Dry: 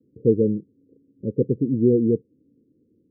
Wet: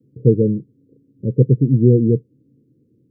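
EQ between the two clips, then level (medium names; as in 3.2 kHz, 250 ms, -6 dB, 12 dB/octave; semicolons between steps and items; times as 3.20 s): peaking EQ 130 Hz +13.5 dB 0.51 oct; +2.0 dB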